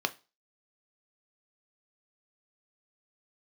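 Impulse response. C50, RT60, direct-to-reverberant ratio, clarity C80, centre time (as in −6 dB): 20.5 dB, non-exponential decay, 8.0 dB, 27.0 dB, 4 ms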